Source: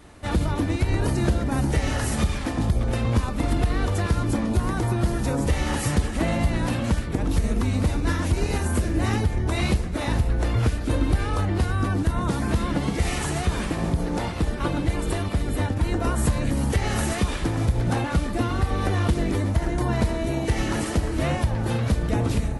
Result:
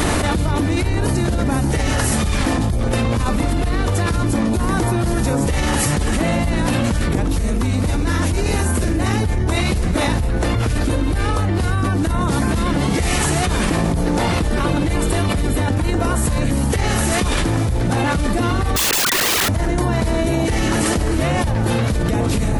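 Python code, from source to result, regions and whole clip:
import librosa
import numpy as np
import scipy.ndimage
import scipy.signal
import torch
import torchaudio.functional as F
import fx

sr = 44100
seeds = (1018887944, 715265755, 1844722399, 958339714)

y = fx.chain(x, sr, fx.sine_speech(),
    fx.overflow_wrap(gain_db=25.5), at=(18.76, 19.49))
y = fx.high_shelf(y, sr, hz=6900.0, db=4.5)
y = fx.hum_notches(y, sr, base_hz=60, count=2)
y = fx.env_flatten(y, sr, amount_pct=100)
y = y * 10.0 ** (-1.0 / 20.0)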